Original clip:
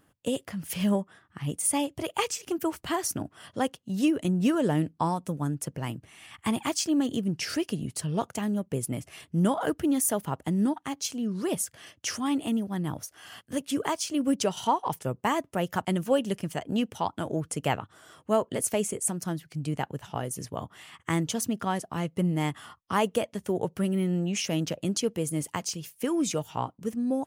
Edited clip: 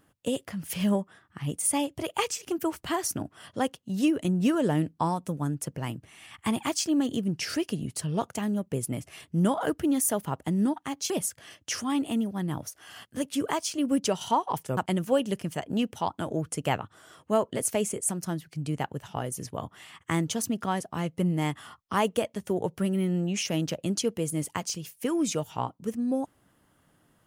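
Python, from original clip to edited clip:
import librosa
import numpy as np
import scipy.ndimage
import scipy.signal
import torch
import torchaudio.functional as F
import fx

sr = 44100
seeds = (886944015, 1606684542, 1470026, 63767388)

y = fx.edit(x, sr, fx.cut(start_s=11.1, length_s=0.36),
    fx.cut(start_s=15.13, length_s=0.63), tone=tone)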